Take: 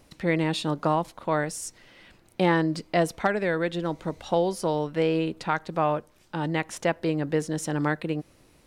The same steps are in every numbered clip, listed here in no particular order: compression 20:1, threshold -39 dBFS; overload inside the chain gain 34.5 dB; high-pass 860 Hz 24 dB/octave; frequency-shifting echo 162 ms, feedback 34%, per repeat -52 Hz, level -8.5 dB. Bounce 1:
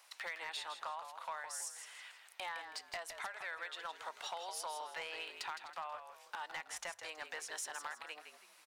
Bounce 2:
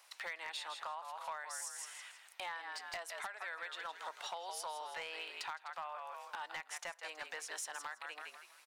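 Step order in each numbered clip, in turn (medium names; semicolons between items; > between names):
high-pass > compression > overload inside the chain > frequency-shifting echo; frequency-shifting echo > high-pass > compression > overload inside the chain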